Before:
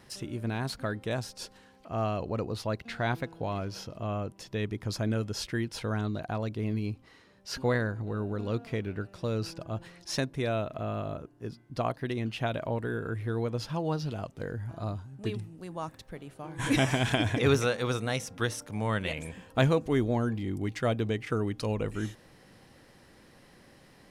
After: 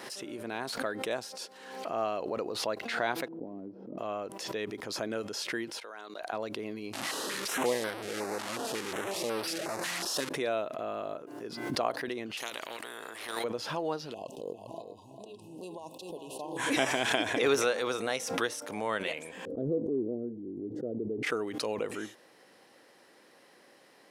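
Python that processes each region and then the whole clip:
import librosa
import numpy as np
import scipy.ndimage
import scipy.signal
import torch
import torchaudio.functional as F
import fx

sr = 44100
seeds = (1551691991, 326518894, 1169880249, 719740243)

y = fx.chain(x, sr, fx.lowpass_res(hz=260.0, q=2.8),
    fx.transient(attack_db=1, sustain_db=5),
    fx.low_shelf(hz=130.0, db=-7.5), at=(3.28, 3.98))
y = fx.chain(y, sr, fx.bessel_highpass(hz=690.0, order=2),
    fx.level_steps(step_db=15), at=(5.8, 6.33))
y = fx.chain(y, sr, fx.delta_mod(bps=64000, step_db=-25.5),
    fx.filter_held_notch(hz=5.5, low_hz=450.0, high_hz=6900.0), at=(6.93, 10.29))
y = fx.chain(y, sr, fx.level_steps(step_db=10),
    fx.spectral_comp(ratio=4.0), at=(12.37, 13.44))
y = fx.chain(y, sr, fx.over_compress(threshold_db=-38.0, ratio=-0.5),
    fx.brickwall_bandstop(low_hz=1100.0, high_hz=2500.0),
    fx.echo_single(ms=400, db=-8.5), at=(14.14, 16.57))
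y = fx.chain(y, sr, fx.cheby2_lowpass(hz=890.0, order=4, stop_db=40),
    fx.sustainer(db_per_s=31.0), at=(19.45, 21.23))
y = scipy.signal.sosfilt(scipy.signal.cheby1(2, 1.0, 410.0, 'highpass', fs=sr, output='sos'), y)
y = fx.pre_swell(y, sr, db_per_s=51.0)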